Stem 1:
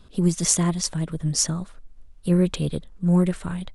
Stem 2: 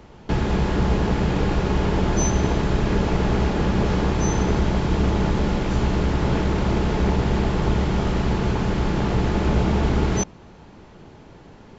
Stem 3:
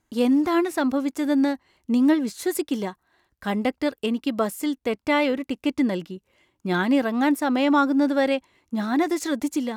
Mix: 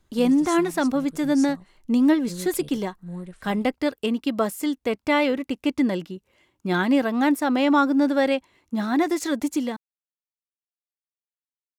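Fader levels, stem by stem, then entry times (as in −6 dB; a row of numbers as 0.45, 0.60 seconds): −16.5 dB, muted, +0.5 dB; 0.00 s, muted, 0.00 s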